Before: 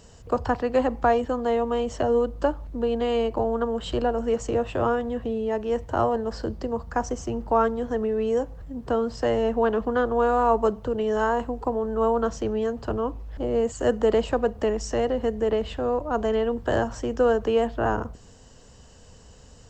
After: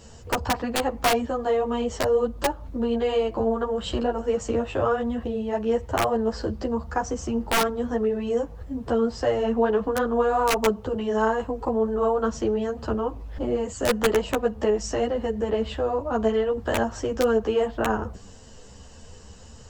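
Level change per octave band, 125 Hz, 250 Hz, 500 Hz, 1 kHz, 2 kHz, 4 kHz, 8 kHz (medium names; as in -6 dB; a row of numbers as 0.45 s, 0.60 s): 0.0 dB, +1.0 dB, -0.5 dB, -1.0 dB, +2.5 dB, +5.5 dB, +7.0 dB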